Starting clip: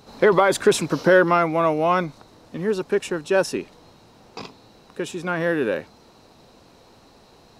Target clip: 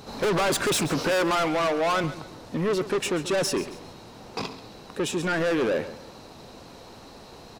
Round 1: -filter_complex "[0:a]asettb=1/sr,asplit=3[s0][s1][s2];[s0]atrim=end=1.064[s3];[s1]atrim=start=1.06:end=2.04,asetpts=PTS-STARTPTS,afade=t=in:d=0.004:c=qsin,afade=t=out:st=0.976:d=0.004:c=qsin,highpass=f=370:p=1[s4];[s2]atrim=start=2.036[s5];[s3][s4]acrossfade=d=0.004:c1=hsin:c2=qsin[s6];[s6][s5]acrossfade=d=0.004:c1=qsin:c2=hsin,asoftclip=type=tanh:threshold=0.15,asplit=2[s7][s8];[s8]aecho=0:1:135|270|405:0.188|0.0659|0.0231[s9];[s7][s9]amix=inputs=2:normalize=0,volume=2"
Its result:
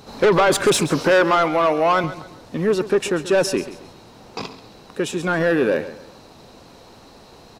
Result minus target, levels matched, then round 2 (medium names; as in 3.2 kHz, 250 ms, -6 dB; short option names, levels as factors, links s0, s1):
saturation: distortion -7 dB
-filter_complex "[0:a]asettb=1/sr,asplit=3[s0][s1][s2];[s0]atrim=end=1.064[s3];[s1]atrim=start=1.06:end=2.04,asetpts=PTS-STARTPTS,afade=t=in:d=0.004:c=qsin,afade=t=out:st=0.976:d=0.004:c=qsin,highpass=f=370:p=1[s4];[s2]atrim=start=2.036[s5];[s3][s4]acrossfade=d=0.004:c1=hsin:c2=qsin[s6];[s6][s5]acrossfade=d=0.004:c1=qsin:c2=hsin,asoftclip=type=tanh:threshold=0.0422,asplit=2[s7][s8];[s8]aecho=0:1:135|270|405:0.188|0.0659|0.0231[s9];[s7][s9]amix=inputs=2:normalize=0,volume=2"